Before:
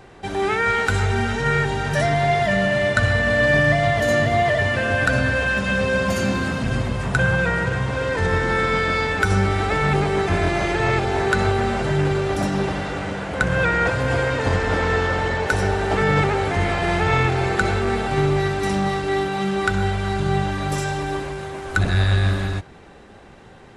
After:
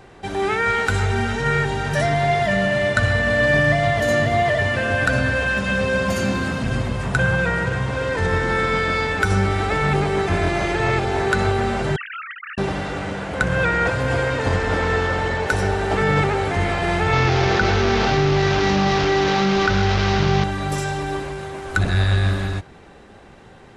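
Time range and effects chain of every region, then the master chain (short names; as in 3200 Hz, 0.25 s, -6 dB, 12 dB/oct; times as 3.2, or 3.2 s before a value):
11.96–12.58 sine-wave speech + brick-wall FIR high-pass 1200 Hz + frequency shift -39 Hz
17.13–20.44 delta modulation 32 kbps, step -19 dBFS + air absorption 64 m + fast leveller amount 70%
whole clip: dry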